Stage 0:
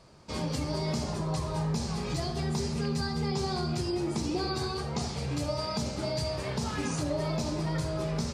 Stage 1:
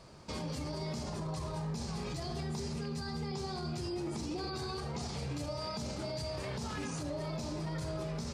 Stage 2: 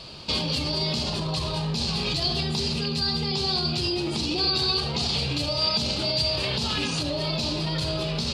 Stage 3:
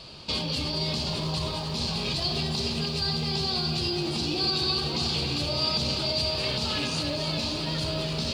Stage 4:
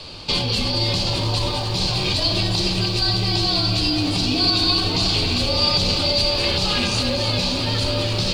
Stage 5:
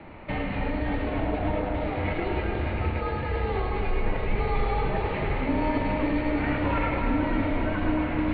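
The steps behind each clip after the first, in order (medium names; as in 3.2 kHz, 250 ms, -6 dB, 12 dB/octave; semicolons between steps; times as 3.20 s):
in parallel at +2.5 dB: gain riding within 4 dB; on the sum: peak limiter -22.5 dBFS, peak gain reduction 10 dB; trim -8 dB
high-order bell 3.5 kHz +14 dB 1.1 oct; trim +9 dB
bit-crushed delay 294 ms, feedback 80%, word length 9-bit, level -9 dB; trim -3 dB
frequency shift -47 Hz; trim +8 dB
two-band feedback delay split 1.3 kHz, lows 261 ms, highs 106 ms, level -4 dB; mistuned SSB -280 Hz 240–2200 Hz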